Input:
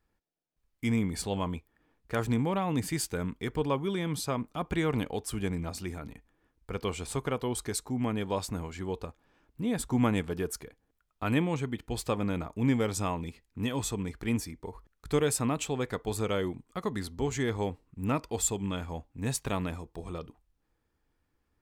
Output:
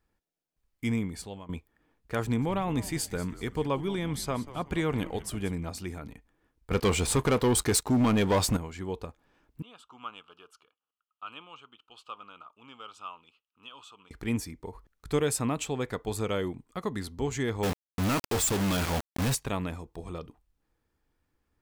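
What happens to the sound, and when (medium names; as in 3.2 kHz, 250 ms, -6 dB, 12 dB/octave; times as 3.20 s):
0.86–1.49 s: fade out, to -19.5 dB
2.22–5.53 s: frequency-shifting echo 188 ms, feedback 41%, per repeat -130 Hz, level -15 dB
6.71–8.57 s: waveshaping leveller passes 3
9.62–14.11 s: two resonant band-passes 1.9 kHz, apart 1.2 oct
17.63–19.35 s: companded quantiser 2-bit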